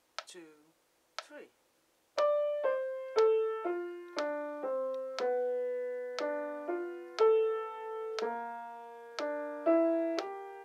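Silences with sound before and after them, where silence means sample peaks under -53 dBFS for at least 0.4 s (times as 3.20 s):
0.54–1.19 s
1.46–2.16 s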